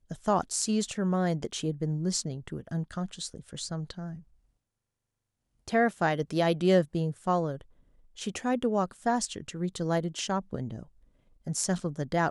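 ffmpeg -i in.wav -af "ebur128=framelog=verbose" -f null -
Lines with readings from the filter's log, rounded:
Integrated loudness:
  I:         -30.1 LUFS
  Threshold: -40.6 LUFS
Loudness range:
  LRA:         7.3 LU
  Threshold: -51.1 LUFS
  LRA low:   -36.2 LUFS
  LRA high:  -28.8 LUFS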